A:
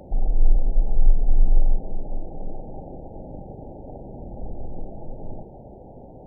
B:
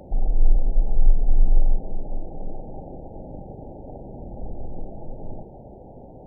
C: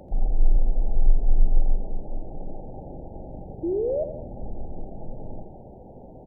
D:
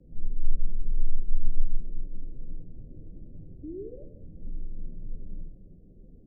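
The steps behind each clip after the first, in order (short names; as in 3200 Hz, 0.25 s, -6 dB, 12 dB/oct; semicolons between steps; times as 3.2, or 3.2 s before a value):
nothing audible
painted sound rise, 3.63–4.04, 320–650 Hz -23 dBFS; on a send: feedback echo 85 ms, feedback 52%, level -10 dB; on the sum: gain -2 dB
chorus voices 4, 1.2 Hz, delay 12 ms, depth 3 ms; Gaussian blur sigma 24 samples; frequency shift -33 Hz; gain -1.5 dB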